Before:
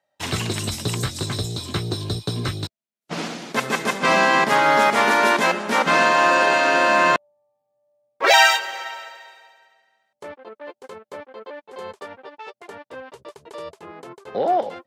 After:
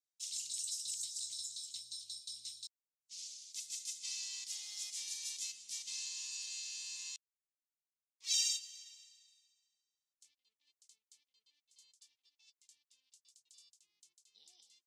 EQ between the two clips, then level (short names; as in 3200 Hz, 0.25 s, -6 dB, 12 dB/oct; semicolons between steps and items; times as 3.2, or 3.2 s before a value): inverse Chebyshev high-pass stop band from 1600 Hz, stop band 70 dB; tape spacing loss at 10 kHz 27 dB; +16.0 dB